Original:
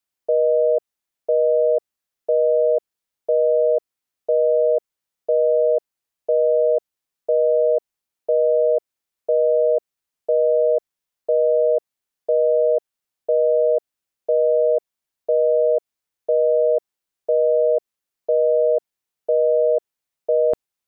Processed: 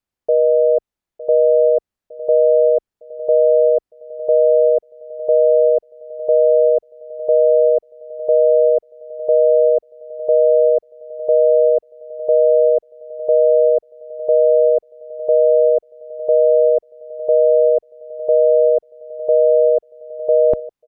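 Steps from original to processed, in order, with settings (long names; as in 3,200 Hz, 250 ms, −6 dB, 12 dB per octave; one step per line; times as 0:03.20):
spectral tilt −2.5 dB per octave
on a send: repeating echo 908 ms, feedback 57%, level −16.5 dB
on the sum: level +1.5 dB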